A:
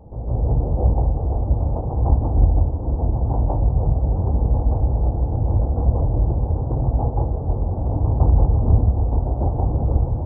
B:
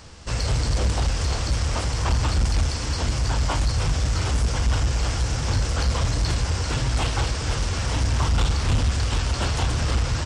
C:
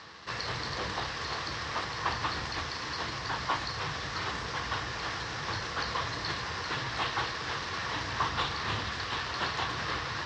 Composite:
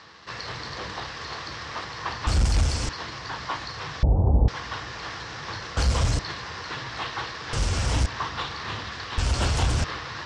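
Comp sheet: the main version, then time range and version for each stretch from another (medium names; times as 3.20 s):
C
2.27–2.89 s: from B
4.03–4.48 s: from A
5.77–6.19 s: from B
7.53–8.06 s: from B
9.18–9.84 s: from B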